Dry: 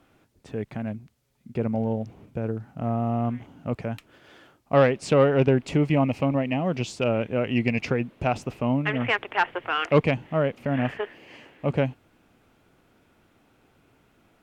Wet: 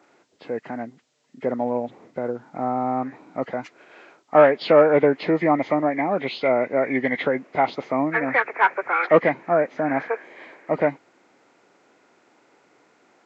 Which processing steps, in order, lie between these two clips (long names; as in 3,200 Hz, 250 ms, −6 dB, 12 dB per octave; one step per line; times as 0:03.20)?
hearing-aid frequency compression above 1,100 Hz 1.5 to 1
high-pass filter 320 Hz 12 dB per octave
wrong playback speed 44.1 kHz file played as 48 kHz
level +6 dB